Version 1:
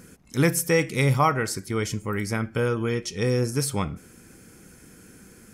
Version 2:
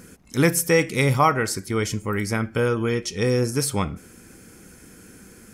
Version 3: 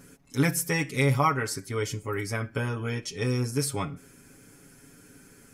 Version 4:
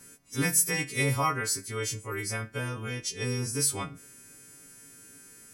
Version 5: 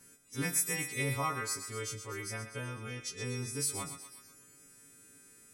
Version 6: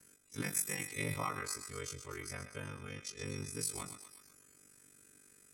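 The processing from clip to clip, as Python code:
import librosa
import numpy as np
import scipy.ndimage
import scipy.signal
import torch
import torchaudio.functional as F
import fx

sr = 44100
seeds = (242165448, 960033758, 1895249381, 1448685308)

y1 = fx.peak_eq(x, sr, hz=140.0, db=-3.5, octaves=0.43)
y1 = y1 * librosa.db_to_amplitude(3.0)
y2 = y1 + 0.86 * np.pad(y1, (int(7.2 * sr / 1000.0), 0))[:len(y1)]
y2 = y2 * librosa.db_to_amplitude(-8.0)
y3 = fx.freq_snap(y2, sr, grid_st=2)
y3 = y3 * librosa.db_to_amplitude(-4.0)
y4 = fx.echo_thinned(y3, sr, ms=123, feedback_pct=63, hz=800.0, wet_db=-9)
y4 = y4 * librosa.db_to_amplitude(-7.0)
y5 = y4 * np.sin(2.0 * np.pi * 24.0 * np.arange(len(y4)) / sr)
y5 = y5 * librosa.db_to_amplitude(-1.5)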